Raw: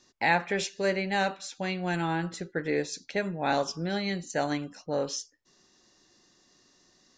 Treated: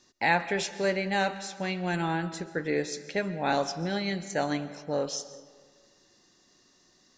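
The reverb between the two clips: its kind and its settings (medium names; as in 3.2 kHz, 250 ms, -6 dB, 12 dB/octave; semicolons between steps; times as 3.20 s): algorithmic reverb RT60 1.6 s, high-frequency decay 0.6×, pre-delay 95 ms, DRR 14 dB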